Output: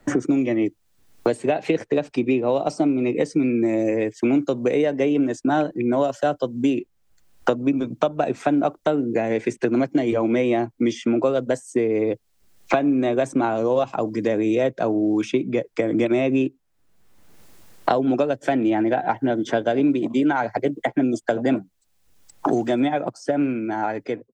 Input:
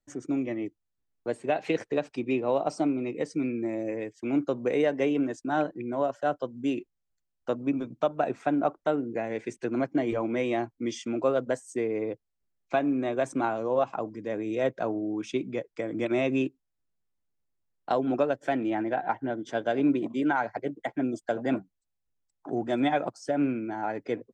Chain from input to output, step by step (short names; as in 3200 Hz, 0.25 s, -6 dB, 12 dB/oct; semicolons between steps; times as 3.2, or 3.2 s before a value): ending faded out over 2.60 s; dynamic EQ 1300 Hz, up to -5 dB, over -39 dBFS, Q 0.71; three-band squash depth 100%; gain +8 dB